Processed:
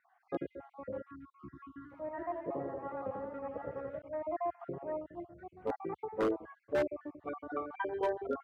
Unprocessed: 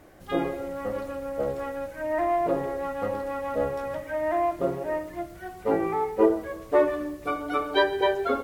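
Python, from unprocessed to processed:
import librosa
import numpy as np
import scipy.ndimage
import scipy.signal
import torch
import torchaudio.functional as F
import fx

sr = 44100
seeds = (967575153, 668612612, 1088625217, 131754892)

y = fx.spec_dropout(x, sr, seeds[0], share_pct=49)
y = scipy.signal.sosfilt(scipy.signal.butter(2, 1400.0, 'lowpass', fs=sr, output='sos'), y)
y = fx.spec_erase(y, sr, start_s=1.06, length_s=0.86, low_hz=380.0, high_hz=1000.0)
y = scipy.signal.sosfilt(scipy.signal.butter(4, 68.0, 'highpass', fs=sr, output='sos'), y)
y = 10.0 ** (-15.5 / 20.0) * (np.abs((y / 10.0 ** (-15.5 / 20.0) + 3.0) % 4.0 - 2.0) - 1.0)
y = fx.echo_warbled(y, sr, ms=85, feedback_pct=60, rate_hz=2.8, cents=85, wet_db=-6.0, at=(1.67, 4.02))
y = y * librosa.db_to_amplitude(-8.5)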